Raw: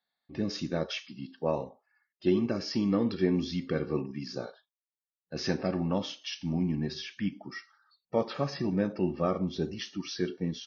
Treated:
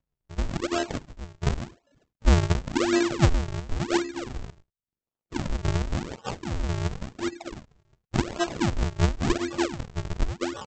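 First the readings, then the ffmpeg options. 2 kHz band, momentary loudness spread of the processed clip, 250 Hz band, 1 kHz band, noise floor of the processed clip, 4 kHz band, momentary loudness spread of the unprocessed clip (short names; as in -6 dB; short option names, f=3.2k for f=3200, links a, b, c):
+8.0 dB, 14 LU, +1.0 dB, +7.0 dB, under -85 dBFS, +2.5 dB, 11 LU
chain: -af "afftfilt=real='hypot(re,im)*cos(PI*b)':imag='0':win_size=512:overlap=0.75,acontrast=41,highpass=f=45:p=1,aresample=16000,acrusher=samples=36:mix=1:aa=0.000001:lfo=1:lforange=57.6:lforate=0.92,aresample=44100,volume=4dB"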